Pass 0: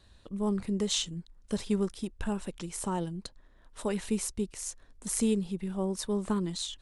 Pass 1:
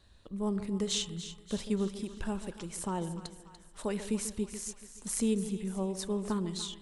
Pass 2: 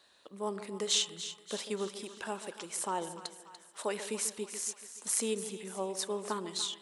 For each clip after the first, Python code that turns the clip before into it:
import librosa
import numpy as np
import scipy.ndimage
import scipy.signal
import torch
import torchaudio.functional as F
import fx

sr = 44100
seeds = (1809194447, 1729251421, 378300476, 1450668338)

y1 = fx.echo_split(x, sr, split_hz=890.0, low_ms=142, high_ms=291, feedback_pct=52, wet_db=-12)
y1 = fx.rev_spring(y1, sr, rt60_s=1.3, pass_ms=(36,), chirp_ms=70, drr_db=17.5)
y1 = y1 * librosa.db_to_amplitude(-2.5)
y2 = scipy.signal.sosfilt(scipy.signal.butter(2, 480.0, 'highpass', fs=sr, output='sos'), y1)
y2 = y2 * librosa.db_to_amplitude(4.0)